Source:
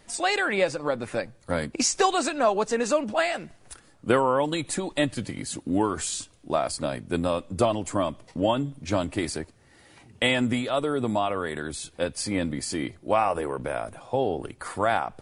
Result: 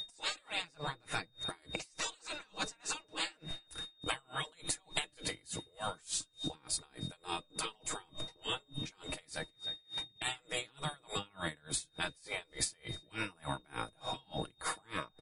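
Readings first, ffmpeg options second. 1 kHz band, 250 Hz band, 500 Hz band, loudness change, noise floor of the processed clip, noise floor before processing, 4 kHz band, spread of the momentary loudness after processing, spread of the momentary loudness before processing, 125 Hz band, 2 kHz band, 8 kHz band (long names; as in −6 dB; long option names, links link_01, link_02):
−16.0 dB, −20.0 dB, −22.0 dB, −13.0 dB, −69 dBFS, −57 dBFS, −5.0 dB, 6 LU, 9 LU, −13.5 dB, −11.0 dB, −8.0 dB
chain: -filter_complex "[0:a]highshelf=frequency=9000:gain=3.5,agate=range=-13dB:threshold=-50dB:ratio=16:detection=peak,asplit=2[link_01][link_02];[link_02]alimiter=limit=-15dB:level=0:latency=1,volume=2dB[link_03];[link_01][link_03]amix=inputs=2:normalize=0,equalizer=frequency=69:width_type=o:width=0.4:gain=8,afftfilt=real='re*lt(hypot(re,im),0.224)':imag='im*lt(hypot(re,im),0.224)':win_size=1024:overlap=0.75,aecho=1:1:6.4:0.45,asplit=2[link_04][link_05];[link_05]adelay=307,lowpass=frequency=3300:poles=1,volume=-24dB,asplit=2[link_06][link_07];[link_07]adelay=307,lowpass=frequency=3300:poles=1,volume=0.46,asplit=2[link_08][link_09];[link_09]adelay=307,lowpass=frequency=3300:poles=1,volume=0.46[link_10];[link_04][link_06][link_08][link_10]amix=inputs=4:normalize=0,aeval=exprs='val(0)+0.0126*sin(2*PI*3700*n/s)':channel_layout=same,acompressor=threshold=-37dB:ratio=5,aeval=exprs='val(0)*pow(10,-32*(0.5-0.5*cos(2*PI*3.4*n/s))/20)':channel_layout=same,volume=4.5dB"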